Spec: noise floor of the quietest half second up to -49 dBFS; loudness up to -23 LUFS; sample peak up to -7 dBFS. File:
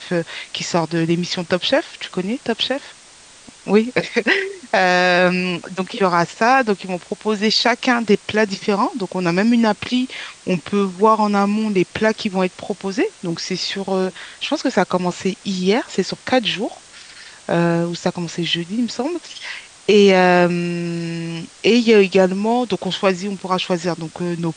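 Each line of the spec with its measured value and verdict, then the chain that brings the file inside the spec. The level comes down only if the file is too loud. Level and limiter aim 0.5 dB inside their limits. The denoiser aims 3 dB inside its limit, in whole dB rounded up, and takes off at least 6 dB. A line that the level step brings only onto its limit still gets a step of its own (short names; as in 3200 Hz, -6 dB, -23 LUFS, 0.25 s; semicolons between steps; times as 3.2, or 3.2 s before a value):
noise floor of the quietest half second -45 dBFS: fail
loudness -18.5 LUFS: fail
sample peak -2.5 dBFS: fail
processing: gain -5 dB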